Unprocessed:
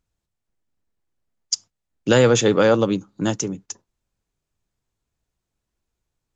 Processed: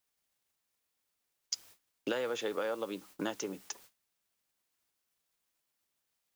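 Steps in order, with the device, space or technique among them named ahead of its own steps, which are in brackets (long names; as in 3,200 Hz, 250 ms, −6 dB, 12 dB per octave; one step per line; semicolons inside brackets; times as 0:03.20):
baby monitor (band-pass filter 430–4,000 Hz; downward compressor 10 to 1, threshold −32 dBFS, peak gain reduction 18.5 dB; white noise bed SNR 17 dB; noise gate −55 dBFS, range −24 dB)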